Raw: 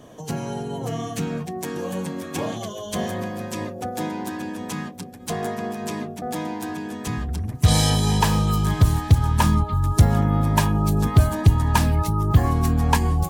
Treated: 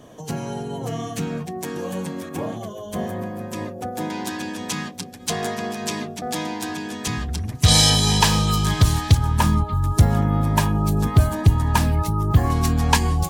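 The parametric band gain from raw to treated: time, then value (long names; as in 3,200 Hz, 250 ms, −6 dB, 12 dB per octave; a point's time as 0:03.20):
parametric band 4,600 Hz 2.5 octaves
+0.5 dB
from 0:02.29 −9.5 dB
from 0:03.53 −2 dB
from 0:04.10 +9.5 dB
from 0:09.17 0 dB
from 0:12.50 +8 dB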